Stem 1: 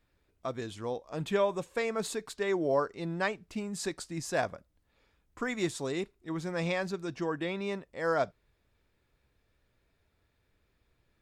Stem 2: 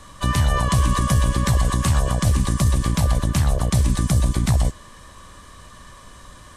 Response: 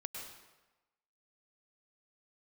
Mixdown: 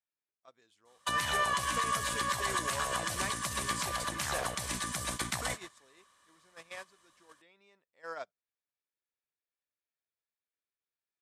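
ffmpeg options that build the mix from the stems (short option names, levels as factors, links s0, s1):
-filter_complex "[0:a]acompressor=threshold=0.0224:ratio=2.5,volume=1.12[s0];[1:a]adynamicequalizer=threshold=0.00891:dfrequency=1700:dqfactor=0.89:tfrequency=1700:tqfactor=0.89:attack=5:release=100:ratio=0.375:range=2.5:mode=boostabove:tftype=bell,acompressor=threshold=0.1:ratio=4,adelay=850,volume=0.944,asplit=2[s1][s2];[s2]volume=0.596[s3];[2:a]atrim=start_sample=2205[s4];[s3][s4]afir=irnorm=-1:irlink=0[s5];[s0][s1][s5]amix=inputs=3:normalize=0,highpass=f=1100:p=1,agate=range=0.0794:threshold=0.0158:ratio=16:detection=peak,alimiter=limit=0.0944:level=0:latency=1:release=140"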